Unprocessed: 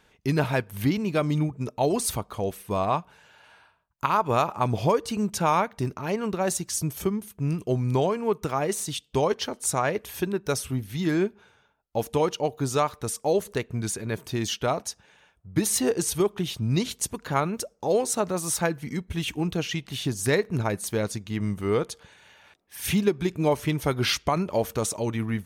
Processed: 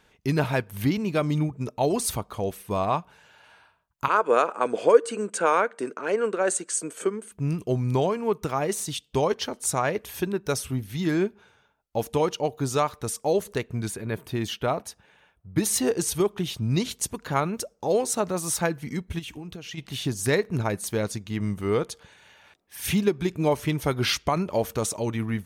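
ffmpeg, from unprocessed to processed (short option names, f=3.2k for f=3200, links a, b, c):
-filter_complex "[0:a]asettb=1/sr,asplit=3[a][b][c];[a]atrim=end=4.084[d];[b]atrim=start=4.08:end=7.32,asetpts=PTS-STARTPTS,afade=t=in:d=0.004:c=qsin,afade=t=out:st=3.236:d=0.004:c=qsin,highpass=f=260:w=0.5412,highpass=f=260:w=1.3066,equalizer=f=480:t=q:w=4:g=10,equalizer=f=840:t=q:w=4:g=-5,equalizer=f=1.5k:t=q:w=4:g=9,equalizer=f=3.8k:t=q:w=4:g=-5,equalizer=f=5.4k:t=q:w=4:g=-9,equalizer=f=8.3k:t=q:w=4:g=10,lowpass=f=8.8k:w=0.5412,lowpass=f=8.8k:w=1.3066[e];[c]atrim=start=7.316[f];[d][e]acrossfade=d=0.004:c1=hsin:c2=qsin[g];[g][f]acrossfade=d=0.004:c1=qsin:c2=hsin,asettb=1/sr,asplit=3[h][i][j];[h]atrim=end=13.884[k];[i]atrim=start=13.88:end=15.58,asetpts=PTS-STARTPTS,afade=t=in:d=0.004:c=qsin,afade=t=out:st=1.696:d=0.004:c=qsin,equalizer=f=6.1k:t=o:w=1.1:g=-8.5[l];[j]atrim=start=15.576[m];[k][l]acrossfade=d=0.004:c1=hsin:c2=qsin[n];[n][m]acrossfade=d=0.004:c1=qsin:c2=hsin,asplit=3[o][p][q];[o]afade=t=out:st=19.18:d=0.02[r];[p]acompressor=threshold=-34dB:ratio=10:attack=3.2:release=140:knee=1:detection=peak,afade=t=in:st=19.18:d=0.02,afade=t=out:st=19.77:d=0.02[s];[q]afade=t=in:st=19.77:d=0.02[t];[r][s][t]amix=inputs=3:normalize=0"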